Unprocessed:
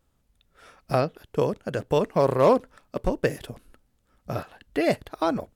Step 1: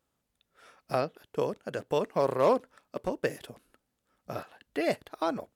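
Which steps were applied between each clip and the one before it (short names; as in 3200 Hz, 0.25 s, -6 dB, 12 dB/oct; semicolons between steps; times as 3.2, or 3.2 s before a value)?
HPF 260 Hz 6 dB/oct; gain -4.5 dB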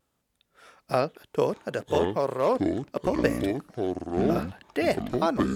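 vocal rider within 4 dB 0.5 s; echoes that change speed 0.538 s, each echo -7 st, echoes 2; vibrato 0.65 Hz 12 cents; gain +3 dB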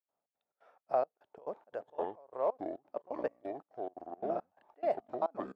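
band-pass 720 Hz, Q 2.7; step gate ".xx.xx.xx.xx." 174 bpm -24 dB; gain -2.5 dB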